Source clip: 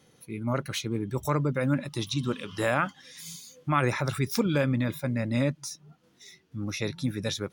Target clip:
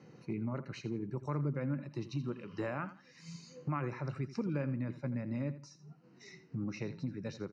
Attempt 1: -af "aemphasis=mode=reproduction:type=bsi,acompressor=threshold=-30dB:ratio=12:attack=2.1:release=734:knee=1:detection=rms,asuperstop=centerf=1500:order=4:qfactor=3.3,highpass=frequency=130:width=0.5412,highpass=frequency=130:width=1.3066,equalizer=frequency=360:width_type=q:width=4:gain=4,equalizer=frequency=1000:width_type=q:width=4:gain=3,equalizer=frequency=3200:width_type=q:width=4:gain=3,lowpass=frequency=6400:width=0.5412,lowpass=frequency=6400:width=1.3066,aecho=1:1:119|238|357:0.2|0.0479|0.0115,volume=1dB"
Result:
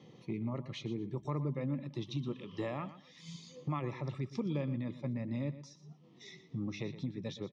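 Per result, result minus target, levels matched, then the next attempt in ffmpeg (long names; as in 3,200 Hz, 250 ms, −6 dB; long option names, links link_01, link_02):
echo 36 ms late; 4,000 Hz band +6.0 dB
-af "aemphasis=mode=reproduction:type=bsi,acompressor=threshold=-30dB:ratio=12:attack=2.1:release=734:knee=1:detection=rms,asuperstop=centerf=1500:order=4:qfactor=3.3,highpass=frequency=130:width=0.5412,highpass=frequency=130:width=1.3066,equalizer=frequency=360:width_type=q:width=4:gain=4,equalizer=frequency=1000:width_type=q:width=4:gain=3,equalizer=frequency=3200:width_type=q:width=4:gain=3,lowpass=frequency=6400:width=0.5412,lowpass=frequency=6400:width=1.3066,aecho=1:1:83|166|249:0.2|0.0479|0.0115,volume=1dB"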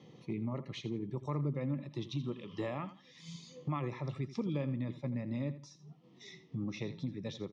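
4,000 Hz band +6.0 dB
-af "aemphasis=mode=reproduction:type=bsi,acompressor=threshold=-30dB:ratio=12:attack=2.1:release=734:knee=1:detection=rms,asuperstop=centerf=3400:order=4:qfactor=3.3,highpass=frequency=130:width=0.5412,highpass=frequency=130:width=1.3066,equalizer=frequency=360:width_type=q:width=4:gain=4,equalizer=frequency=1000:width_type=q:width=4:gain=3,equalizer=frequency=3200:width_type=q:width=4:gain=3,lowpass=frequency=6400:width=0.5412,lowpass=frequency=6400:width=1.3066,aecho=1:1:83|166|249:0.2|0.0479|0.0115,volume=1dB"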